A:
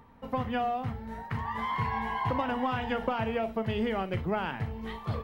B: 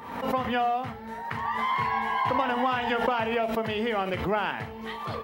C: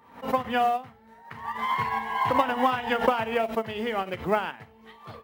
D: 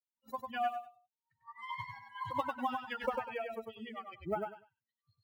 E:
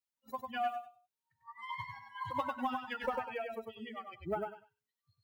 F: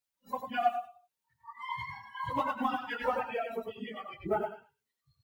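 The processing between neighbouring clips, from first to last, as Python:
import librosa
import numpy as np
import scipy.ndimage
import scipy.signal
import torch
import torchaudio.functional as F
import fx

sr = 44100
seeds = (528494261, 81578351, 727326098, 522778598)

y1 = fx.highpass(x, sr, hz=470.0, slope=6)
y1 = fx.pre_swell(y1, sr, db_per_s=59.0)
y1 = F.gain(torch.from_numpy(y1), 6.0).numpy()
y2 = fx.quant_float(y1, sr, bits=4)
y2 = fx.upward_expand(y2, sr, threshold_db=-36.0, expansion=2.5)
y2 = F.gain(torch.from_numpy(y2), 6.0).numpy()
y3 = fx.bin_expand(y2, sr, power=3.0)
y3 = fx.echo_feedback(y3, sr, ms=98, feedback_pct=21, wet_db=-4.5)
y3 = F.gain(torch.from_numpy(y3), -8.0).numpy()
y4 = fx.comb_fb(y3, sr, f0_hz=84.0, decay_s=0.47, harmonics='odd', damping=0.0, mix_pct=50)
y4 = 10.0 ** (-27.5 / 20.0) * np.tanh(y4 / 10.0 ** (-27.5 / 20.0))
y4 = F.gain(torch.from_numpy(y4), 5.5).numpy()
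y5 = fx.phase_scramble(y4, sr, seeds[0], window_ms=50)
y5 = F.gain(torch.from_numpy(y5), 4.0).numpy()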